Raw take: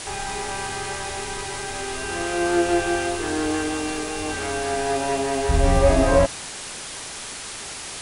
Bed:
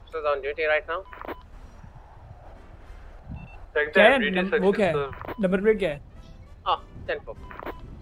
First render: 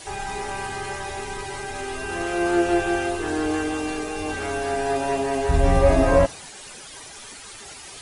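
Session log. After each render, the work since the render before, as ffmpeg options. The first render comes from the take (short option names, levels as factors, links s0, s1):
-af "afftdn=nr=11:nf=-35"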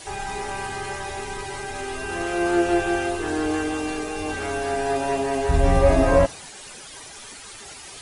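-af anull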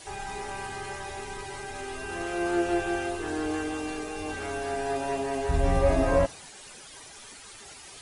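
-af "volume=0.501"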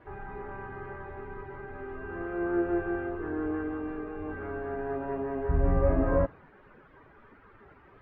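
-af "lowpass=f=1500:w=0.5412,lowpass=f=1500:w=1.3066,equalizer=f=750:t=o:w=0.72:g=-8.5"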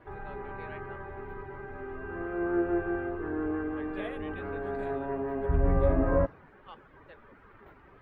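-filter_complex "[1:a]volume=0.0562[s0];[0:a][s0]amix=inputs=2:normalize=0"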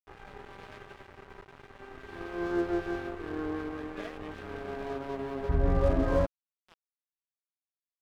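-af "aeval=exprs='sgn(val(0))*max(abs(val(0))-0.01,0)':c=same"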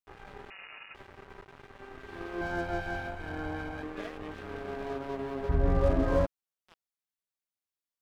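-filter_complex "[0:a]asettb=1/sr,asplit=3[s0][s1][s2];[s0]atrim=end=0.504[s3];[s1]atrim=start=0.5:end=0.95,asetpts=PTS-STARTPTS,afade=t=in:d=0.004:c=qsin,afade=t=out:st=0.446:d=0.004:c=qsin,lowpass=f=2500:t=q:w=0.5098,lowpass=f=2500:t=q:w=0.6013,lowpass=f=2500:t=q:w=0.9,lowpass=f=2500:t=q:w=2.563,afreqshift=-2900[s4];[s2]atrim=start=0.946[s5];[s3][s4]acrossfade=d=0.004:c1=hsin:c2=qsin[s6];[s6][s5]acrossfade=d=0.004:c1=qsin:c2=hsin,asettb=1/sr,asplit=3[s7][s8][s9];[s7]atrim=end=2.414[s10];[s8]atrim=start=2.41:end=3.83,asetpts=PTS-STARTPTS,afade=t=in:d=0.004:c=qsin,afade=t=out:st=1.416:d=0.004:c=qsin,aecho=1:1:1.3:0.78,atrim=end_sample=62622[s11];[s9]atrim=start=3.826[s12];[s10][s11]acrossfade=d=0.004:c1=hsin:c2=qsin[s13];[s13][s12]acrossfade=d=0.004:c1=qsin:c2=hsin"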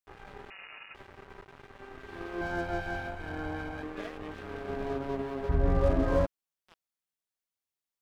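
-filter_complex "[0:a]asettb=1/sr,asplit=3[s0][s1][s2];[s0]atrim=end=4.694[s3];[s1]atrim=start=4.69:end=5.22,asetpts=PTS-STARTPTS,afade=t=in:d=0.004:c=qsin,afade=t=out:st=0.526:d=0.004:c=qsin,lowshelf=f=320:g=6.5[s4];[s2]atrim=start=5.216[s5];[s3][s4]acrossfade=d=0.004:c1=hsin:c2=qsin[s6];[s6][s5]acrossfade=d=0.004:c1=qsin:c2=hsin"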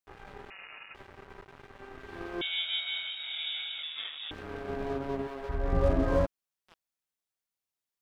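-filter_complex "[0:a]asettb=1/sr,asplit=3[s0][s1][s2];[s0]atrim=end=2.414[s3];[s1]atrim=start=2.41:end=4.31,asetpts=PTS-STARTPTS,afade=t=in:d=0.004:c=qsin,afade=t=out:st=1.896:d=0.004:c=qsin,lowpass=f=3200:t=q:w=0.5098,lowpass=f=3200:t=q:w=0.6013,lowpass=f=3200:t=q:w=0.9,lowpass=f=3200:t=q:w=2.563,afreqshift=-3800[s4];[s2]atrim=start=4.306[s5];[s3][s4]acrossfade=d=0.004:c1=hsin:c2=qsin[s6];[s6][s5]acrossfade=d=0.004:c1=qsin:c2=hsin,asettb=1/sr,asplit=3[s7][s8][s9];[s7]atrim=end=5.274[s10];[s8]atrim=start=5.27:end=5.73,asetpts=PTS-STARTPTS,afade=t=in:d=0.004:c=qsin,afade=t=out:st=0.456:d=0.004:c=qsin,equalizer=f=130:t=o:w=2.9:g=-11.5[s11];[s9]atrim=start=5.726[s12];[s10][s11]acrossfade=d=0.004:c1=hsin:c2=qsin[s13];[s13][s12]acrossfade=d=0.004:c1=qsin:c2=hsin"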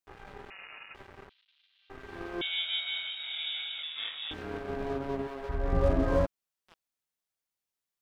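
-filter_complex "[0:a]asettb=1/sr,asplit=3[s0][s1][s2];[s0]atrim=end=1.294[s3];[s1]atrim=start=1.29:end=1.9,asetpts=PTS-STARTPTS,afade=t=in:d=0.004:c=qsin,afade=t=out:st=0.606:d=0.004:c=qsin,asuperpass=centerf=3600:order=4:qfactor=2.5[s4];[s2]atrim=start=1.896[s5];[s3][s4]acrossfade=d=0.004:c1=hsin:c2=qsin[s6];[s6][s5]acrossfade=d=0.004:c1=qsin:c2=hsin,asettb=1/sr,asplit=3[s7][s8][s9];[s7]atrim=end=3.994[s10];[s8]atrim=start=3.99:end=4.58,asetpts=PTS-STARTPTS,afade=t=in:d=0.004:c=qsin,afade=t=out:st=0.586:d=0.004:c=qsin,asplit=2[s11][s12];[s12]adelay=26,volume=0.75[s13];[s11][s13]amix=inputs=2:normalize=0,atrim=end_sample=26019[s14];[s9]atrim=start=4.576[s15];[s10][s14]acrossfade=d=0.004:c1=hsin:c2=qsin[s16];[s16][s15]acrossfade=d=0.004:c1=qsin:c2=hsin"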